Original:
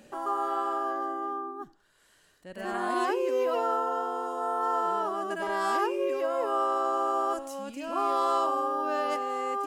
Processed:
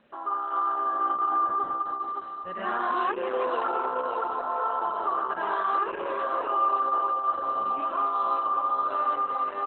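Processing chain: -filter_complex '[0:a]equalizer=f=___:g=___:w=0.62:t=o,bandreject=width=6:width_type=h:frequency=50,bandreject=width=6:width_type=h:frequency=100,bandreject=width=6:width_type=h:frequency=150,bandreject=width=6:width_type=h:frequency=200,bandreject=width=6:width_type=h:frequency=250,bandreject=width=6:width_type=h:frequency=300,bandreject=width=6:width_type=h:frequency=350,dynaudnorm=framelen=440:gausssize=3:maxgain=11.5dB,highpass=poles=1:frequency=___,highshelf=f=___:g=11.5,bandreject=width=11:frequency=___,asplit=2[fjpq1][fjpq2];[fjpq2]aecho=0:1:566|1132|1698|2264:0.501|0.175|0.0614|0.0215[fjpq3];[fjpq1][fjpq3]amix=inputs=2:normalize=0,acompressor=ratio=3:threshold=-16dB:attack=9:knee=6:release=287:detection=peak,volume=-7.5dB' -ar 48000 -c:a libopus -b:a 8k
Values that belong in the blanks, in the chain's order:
1200, 13, 110, 5900, 1300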